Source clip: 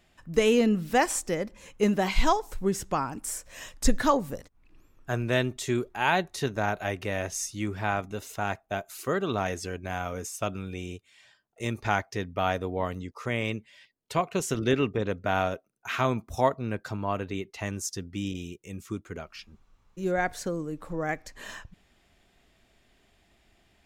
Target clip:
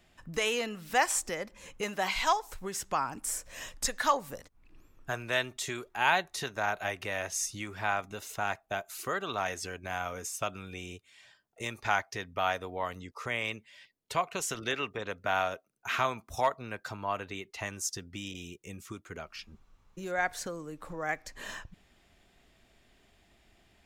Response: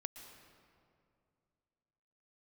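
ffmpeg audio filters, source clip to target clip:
-filter_complex "[0:a]acrossover=split=640|1300[a][b][c];[a]acompressor=threshold=-41dB:ratio=6[d];[b]volume=20.5dB,asoftclip=hard,volume=-20.5dB[e];[d][e][c]amix=inputs=3:normalize=0"

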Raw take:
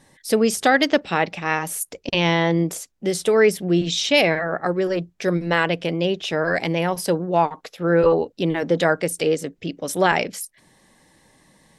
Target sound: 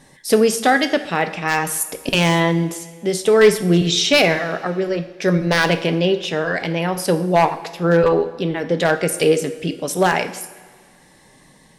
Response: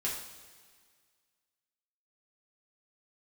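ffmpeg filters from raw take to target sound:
-filter_complex "[0:a]tremolo=f=0.53:d=0.49,aeval=exprs='0.316*(abs(mod(val(0)/0.316+3,4)-2)-1)':c=same,asplit=2[a][b];[1:a]atrim=start_sample=2205[c];[b][c]afir=irnorm=-1:irlink=0,volume=-8.5dB[d];[a][d]amix=inputs=2:normalize=0,volume=3dB"

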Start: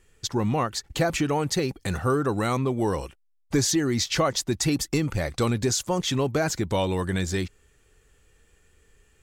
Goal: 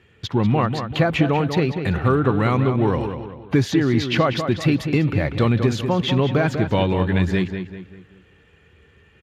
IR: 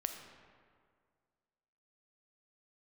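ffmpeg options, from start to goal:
-filter_complex "[0:a]bass=f=250:g=4,treble=f=4k:g=-1,asplit=2[a][b];[b]acompressor=threshold=-37dB:ratio=6,volume=0dB[c];[a][c]amix=inputs=2:normalize=0,highshelf=f=4.3k:t=q:w=1.5:g=-11.5,asplit=2[d][e];[e]adelay=194,lowpass=f=3.5k:p=1,volume=-7.5dB,asplit=2[f][g];[g]adelay=194,lowpass=f=3.5k:p=1,volume=0.42,asplit=2[h][i];[i]adelay=194,lowpass=f=3.5k:p=1,volume=0.42,asplit=2[j][k];[k]adelay=194,lowpass=f=3.5k:p=1,volume=0.42,asplit=2[l][m];[m]adelay=194,lowpass=f=3.5k:p=1,volume=0.42[n];[d][f][h][j][l][n]amix=inputs=6:normalize=0,volume=2dB" -ar 32000 -c:a libspeex -b:a 36k

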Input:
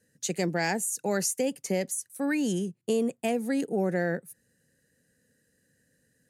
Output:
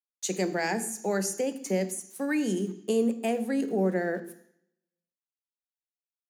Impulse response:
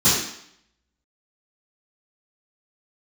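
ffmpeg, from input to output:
-filter_complex "[0:a]aeval=exprs='val(0)*gte(abs(val(0)),0.00398)':c=same,highpass=f=190:w=0.5412,highpass=f=190:w=1.3066,asplit=2[a][b];[1:a]atrim=start_sample=2205[c];[b][c]afir=irnorm=-1:irlink=0,volume=-29dB[d];[a][d]amix=inputs=2:normalize=0,adynamicequalizer=threshold=0.00562:dfrequency=2100:dqfactor=0.7:tfrequency=2100:tqfactor=0.7:attack=5:release=100:ratio=0.375:range=3:mode=cutabove:tftype=highshelf"

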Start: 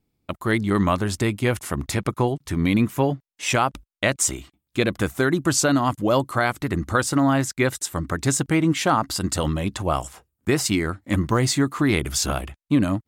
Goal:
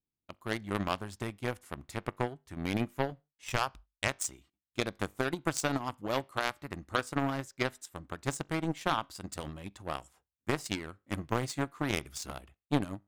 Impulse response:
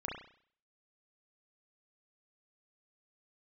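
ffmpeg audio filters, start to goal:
-filter_complex "[0:a]aeval=exprs='0.422*(cos(1*acos(clip(val(0)/0.422,-1,1)))-cos(1*PI/2))+0.119*(cos(3*acos(clip(val(0)/0.422,-1,1)))-cos(3*PI/2))':c=same,asettb=1/sr,asplit=3[a][b][c];[a]atrim=end=2.904[d];[b]atrim=start=2.9:end=4.08,asetpts=PTS-STARTPTS,afade=t=in:d=0.004:c=qsin,afade=t=out:st=1.176:d=0.004:c=qsin,asubboost=boost=11.5:cutoff=120[e];[c]atrim=start=4.076[f];[d][e]acrossfade=d=0.004:c1=hsin:c2=qsin[g];[g][f]acrossfade=d=0.004:c1=qsin:c2=hsin,asplit=2[h][i];[1:a]atrim=start_sample=2205,afade=t=out:st=0.35:d=0.01,atrim=end_sample=15876,asetrate=70560,aresample=44100[j];[i][j]afir=irnorm=-1:irlink=0,volume=-20dB[k];[h][k]amix=inputs=2:normalize=0,volume=-6.5dB"

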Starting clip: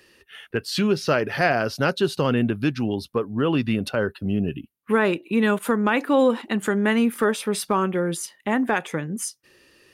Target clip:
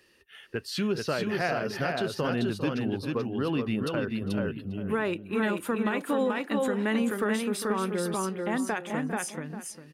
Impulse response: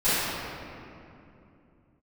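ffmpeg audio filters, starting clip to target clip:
-filter_complex "[0:a]asplit=2[a][b];[b]aecho=0:1:434:0.668[c];[a][c]amix=inputs=2:normalize=0,alimiter=limit=-11.5dB:level=0:latency=1:release=83,asplit=2[d][e];[e]adelay=402,lowpass=f=1.5k:p=1,volume=-11dB,asplit=2[f][g];[g]adelay=402,lowpass=f=1.5k:p=1,volume=0.16[h];[f][h]amix=inputs=2:normalize=0[i];[d][i]amix=inputs=2:normalize=0,volume=-7dB"

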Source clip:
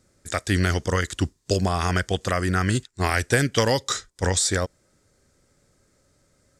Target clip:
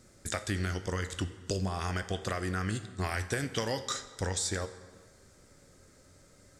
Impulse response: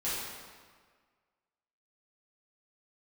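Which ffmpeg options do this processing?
-filter_complex "[0:a]flanger=delay=8.4:depth=3.4:regen=74:speed=0.42:shape=triangular,acompressor=threshold=-44dB:ratio=3,asplit=2[a][b];[1:a]atrim=start_sample=2205[c];[b][c]afir=irnorm=-1:irlink=0,volume=-16.5dB[d];[a][d]amix=inputs=2:normalize=0,volume=8dB"

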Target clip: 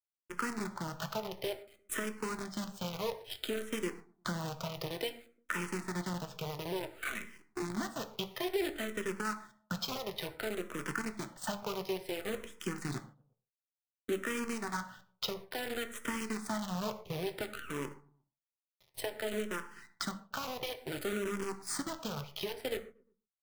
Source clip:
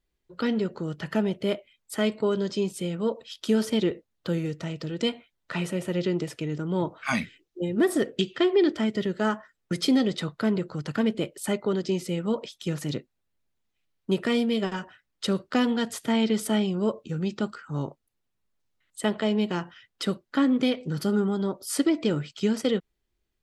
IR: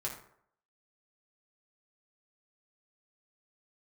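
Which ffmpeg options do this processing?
-filter_complex "[0:a]highpass=f=60:w=0.5412,highpass=f=60:w=1.3066,equalizer=f=1.2k:w=0.64:g=11,acrossover=split=110|970[a][b][c];[a]acontrast=90[d];[d][b][c]amix=inputs=3:normalize=0,alimiter=limit=-12dB:level=0:latency=1:release=298,acompressor=threshold=-37dB:ratio=6,acrusher=bits=7:dc=4:mix=0:aa=0.000001,asplit=2[e][f];[f]adelay=117,lowpass=f=990:p=1,volume=-23dB,asplit=2[g][h];[h]adelay=117,lowpass=f=990:p=1,volume=0.48,asplit=2[i][j];[j]adelay=117,lowpass=f=990:p=1,volume=0.48[k];[e][g][i][k]amix=inputs=4:normalize=0,asplit=2[l][m];[1:a]atrim=start_sample=2205,afade=t=out:st=0.21:d=0.01,atrim=end_sample=9702[n];[m][n]afir=irnorm=-1:irlink=0,volume=-3.5dB[o];[l][o]amix=inputs=2:normalize=0,asplit=2[p][q];[q]afreqshift=-0.57[r];[p][r]amix=inputs=2:normalize=1"

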